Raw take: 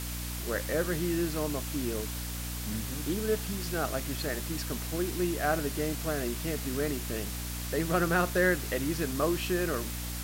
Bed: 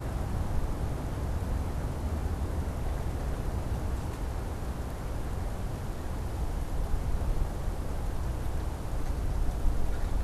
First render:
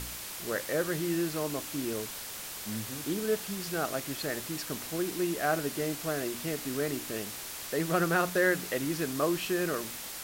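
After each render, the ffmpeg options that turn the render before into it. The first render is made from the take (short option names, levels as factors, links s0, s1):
-af "bandreject=f=60:t=h:w=4,bandreject=f=120:t=h:w=4,bandreject=f=180:t=h:w=4,bandreject=f=240:t=h:w=4,bandreject=f=300:t=h:w=4"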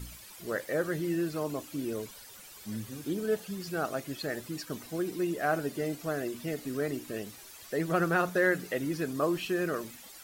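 -af "afftdn=nr=13:nf=-41"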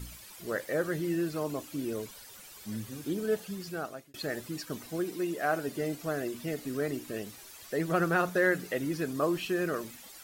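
-filter_complex "[0:a]asettb=1/sr,asplit=3[s0][s1][s2];[s0]atrim=end=5.044[s3];[s1]atrim=start=5.04:end=5.68,asetpts=PTS-STARTPTS,afade=t=in:d=0.004:c=qsin,afade=t=out:st=0.636:d=0.004:c=qsin,lowshelf=f=150:g=-9[s4];[s2]atrim=start=5.676[s5];[s3][s4]acrossfade=d=0.004:c1=hsin:c2=qsin[s6];[s6][s5]acrossfade=d=0.004:c1=qsin:c2=hsin,asplit=2[s7][s8];[s7]atrim=end=4.14,asetpts=PTS-STARTPTS,afade=t=out:st=3.33:d=0.81:c=qsin[s9];[s8]atrim=start=4.14,asetpts=PTS-STARTPTS,afade=t=in:d=0.004:c=hsin[s10];[s9][s10]concat=n=2:v=0:a=1"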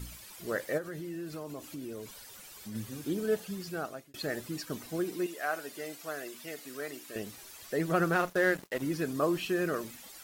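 -filter_complex "[0:a]asplit=3[s0][s1][s2];[s0]afade=t=out:st=0.77:d=0.02[s3];[s1]acompressor=threshold=0.0112:ratio=3:attack=3.2:release=140:knee=1:detection=peak,afade=t=in:st=0.77:d=0.02,afade=t=out:st=2.74:d=0.02[s4];[s2]afade=t=in:st=2.74:d=0.02[s5];[s3][s4][s5]amix=inputs=3:normalize=0,asettb=1/sr,asplit=3[s6][s7][s8];[s6]atrim=end=5.264[s9];[s7]atrim=start=5.26:end=7.16,asetpts=PTS-STARTPTS,afade=t=in:d=0.004:c=qsin,afade=t=out:st=1.896:d=0.004:c=qsin,highpass=f=1000:p=1[s10];[s8]atrim=start=7.156[s11];[s9][s10]acrossfade=d=0.004:c1=hsin:c2=qsin[s12];[s12][s11]acrossfade=d=0.004:c1=qsin:c2=hsin,asettb=1/sr,asplit=3[s13][s14][s15];[s13]atrim=end=8.134[s16];[s14]atrim=start=8.13:end=8.82,asetpts=PTS-STARTPTS,afade=t=in:d=0.004:c=qsin,afade=t=out:st=0.686:d=0.004:c=qsin,aeval=exprs='sgn(val(0))*max(abs(val(0))-0.01,0)':c=same[s17];[s15]atrim=start=8.816[s18];[s16][s17]acrossfade=d=0.004:c1=hsin:c2=qsin[s19];[s19][s18]acrossfade=d=0.004:c1=qsin:c2=hsin"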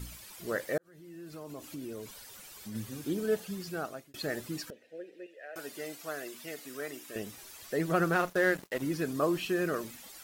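-filter_complex "[0:a]asettb=1/sr,asplit=3[s0][s1][s2];[s0]atrim=end=4.704[s3];[s1]atrim=start=4.7:end=5.56,asetpts=PTS-STARTPTS,afade=t=in:d=0.004:c=qsin,afade=t=out:st=0.856:d=0.004:c=qsin,asplit=3[s4][s5][s6];[s4]bandpass=f=530:t=q:w=8,volume=1[s7];[s5]bandpass=f=1840:t=q:w=8,volume=0.501[s8];[s6]bandpass=f=2480:t=q:w=8,volume=0.355[s9];[s7][s8][s9]amix=inputs=3:normalize=0[s10];[s2]atrim=start=5.556[s11];[s3][s10]acrossfade=d=0.004:c1=hsin:c2=qsin[s12];[s12][s11]acrossfade=d=0.004:c1=qsin:c2=hsin,asettb=1/sr,asplit=3[s13][s14][s15];[s13]atrim=end=6.664[s16];[s14]atrim=start=6.66:end=7.38,asetpts=PTS-STARTPTS,afade=t=in:d=0.004:c=qsin,afade=t=out:st=0.716:d=0.004:c=qsin,bandreject=f=4300:w=12[s17];[s15]atrim=start=7.376[s18];[s16][s17]acrossfade=d=0.004:c1=hsin:c2=qsin[s19];[s19][s18]acrossfade=d=0.004:c1=qsin:c2=hsin,asplit=2[s20][s21];[s20]atrim=end=0.78,asetpts=PTS-STARTPTS,afade=t=out:st=0.776:d=0.004:c=hsin[s22];[s21]atrim=start=0.78,asetpts=PTS-STARTPTS,afade=t=in:d=0.94[s23];[s22][s23]concat=n=2:v=0:a=1"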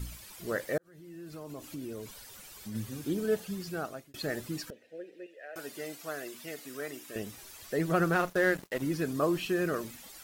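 -af "lowshelf=f=120:g=6"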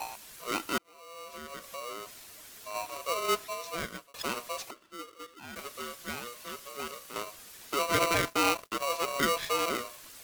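-filter_complex "[0:a]acrossover=split=110|1600[s0][s1][s2];[s0]acrusher=bits=7:mix=0:aa=0.000001[s3];[s3][s1][s2]amix=inputs=3:normalize=0,aeval=exprs='val(0)*sgn(sin(2*PI*840*n/s))':c=same"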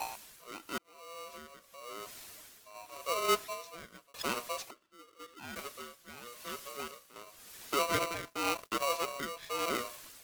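-af "tremolo=f=0.91:d=0.8"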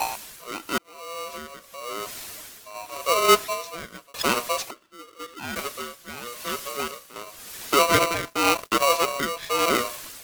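-af "volume=3.98"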